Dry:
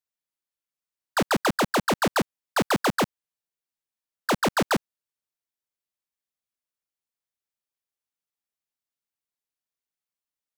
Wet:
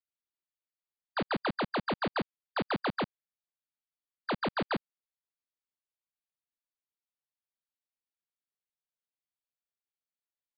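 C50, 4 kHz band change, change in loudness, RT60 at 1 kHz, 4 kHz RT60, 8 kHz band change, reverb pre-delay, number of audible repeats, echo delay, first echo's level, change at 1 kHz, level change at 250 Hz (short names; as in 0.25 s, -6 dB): none, -9.0 dB, -9.0 dB, none, none, under -40 dB, none, none, none, none, -8.5 dB, -8.5 dB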